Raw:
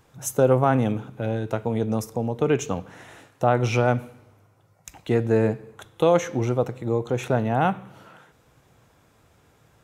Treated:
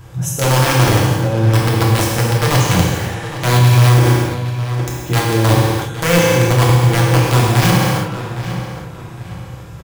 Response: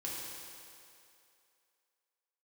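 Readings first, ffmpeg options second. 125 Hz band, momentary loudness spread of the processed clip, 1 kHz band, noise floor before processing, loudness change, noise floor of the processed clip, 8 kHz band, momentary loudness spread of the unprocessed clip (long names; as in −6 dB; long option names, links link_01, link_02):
+15.5 dB, 13 LU, +8.5 dB, −60 dBFS, +9.5 dB, −32 dBFS, +15.5 dB, 9 LU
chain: -filter_complex "[0:a]lowshelf=frequency=200:width_type=q:width=1.5:gain=8.5,bandreject=frequency=142.3:width_type=h:width=4,bandreject=frequency=284.6:width_type=h:width=4,bandreject=frequency=426.9:width_type=h:width=4,areverse,acompressor=threshold=-28dB:ratio=6,areverse,aeval=exprs='(mod(13.3*val(0)+1,2)-1)/13.3':channel_layout=same,asplit=2[link_01][link_02];[link_02]adelay=811,lowpass=frequency=4400:poles=1,volume=-12.5dB,asplit=2[link_03][link_04];[link_04]adelay=811,lowpass=frequency=4400:poles=1,volume=0.35,asplit=2[link_05][link_06];[link_06]adelay=811,lowpass=frequency=4400:poles=1,volume=0.35,asplit=2[link_07][link_08];[link_08]adelay=811,lowpass=frequency=4400:poles=1,volume=0.35[link_09];[link_01][link_03][link_05][link_07][link_09]amix=inputs=5:normalize=0[link_10];[1:a]atrim=start_sample=2205,afade=type=out:start_time=0.4:duration=0.01,atrim=end_sample=18081[link_11];[link_10][link_11]afir=irnorm=-1:irlink=0,alimiter=level_in=18dB:limit=-1dB:release=50:level=0:latency=1,volume=-1dB"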